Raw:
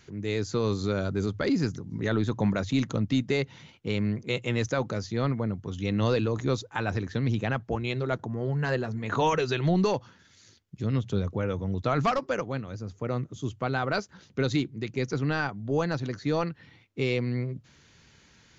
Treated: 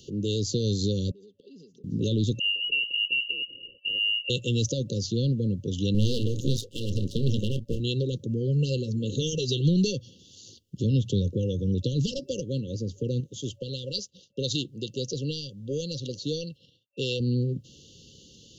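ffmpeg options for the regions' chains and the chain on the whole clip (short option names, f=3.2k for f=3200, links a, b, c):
-filter_complex "[0:a]asettb=1/sr,asplit=3[a][b][c];[a]atrim=end=1.114[d];[b]atrim=start=1.11:end=1.84,asetpts=PTS-STARTPTS,afade=t=in:d=0.004:c=qsin,afade=t=out:st=0.726:d=0.004:c=qsin,bandpass=f=1.2k:t=q:w=3.6,aecho=1:1:4.8:0.68,atrim=end_sample=32193,acompressor=threshold=-50dB:ratio=20:attack=3.2:release=140:knee=1:detection=peak[e];[c]atrim=start=1.836[f];[d][e]acrossfade=d=0.004:c1=hsin:c2=qsin[g];[g][f]acrossfade=d=0.004:c1=qsin:c2=hsin,asettb=1/sr,asplit=3[h][i][j];[h]atrim=end=2.394[k];[i]atrim=start=2.39:end=4.3,asetpts=PTS-STARTPTS,afade=t=in:d=0.004:c=qsin,afade=t=out:st=1.906:d=0.004:c=qsin,acompressor=threshold=-29dB:ratio=5:attack=3.2:release=140:knee=1:detection=peak,lowpass=f=2.6k:t=q:w=0.5098,lowpass=f=2.6k:t=q:w=0.6013,lowpass=f=2.6k:t=q:w=0.9,lowpass=f=2.6k:t=q:w=2.563,afreqshift=-3000[l];[j]atrim=start=4.296[m];[k][l]acrossfade=d=0.004:c1=hsin:c2=qsin[n];[n][m]acrossfade=d=0.004:c1=qsin:c2=hsin,asettb=1/sr,asplit=3[o][p][q];[o]atrim=end=5.944[r];[p]atrim=start=5.94:end=7.8,asetpts=PTS-STARTPTS,afade=t=in:d=0.004:c=qsin,afade=t=out:st=1.856:d=0.004:c=qsin,lowshelf=f=420:g=5,asplit=2[s][t];[t]adelay=29,volume=-12.5dB[u];[s][u]amix=inputs=2:normalize=0,atrim=end_sample=82026,aeval=exprs='max(val(0),0)':c=same[v];[q]atrim=start=7.796[w];[r][v]acrossfade=d=0.004:c1=hsin:c2=qsin[x];[x][w]acrossfade=d=0.004:c1=qsin:c2=hsin,asettb=1/sr,asplit=3[y][z][aa];[y]atrim=end=13.204[ab];[z]atrim=start=13.2:end=17.2,asetpts=PTS-STARTPTS,afade=t=in:d=0.004:c=qsin,afade=t=out:st=3.996:d=0.004:c=qsin,agate=range=-33dB:threshold=-48dB:ratio=3:release=100:detection=peak,lowshelf=f=460:t=q:w=1.5:g=-7[ac];[aa]atrim=start=17.196[ad];[ab][ac]acrossfade=d=0.004:c1=hsin:c2=qsin[ae];[ae][ad]acrossfade=d=0.004:c1=qsin:c2=hsin,lowshelf=f=120:g=-7,acrossover=split=180|3000[af][ag][ah];[ag]acompressor=threshold=-37dB:ratio=6[ai];[af][ai][ah]amix=inputs=3:normalize=0,afftfilt=real='re*(1-between(b*sr/4096,570,2700))':imag='im*(1-between(b*sr/4096,570,2700))':win_size=4096:overlap=0.75,volume=8.5dB"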